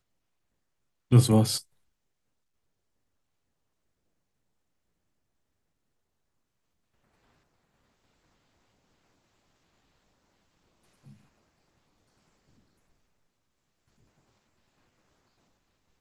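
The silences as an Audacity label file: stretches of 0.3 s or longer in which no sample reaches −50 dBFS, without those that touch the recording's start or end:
1.630000	11.060000	silence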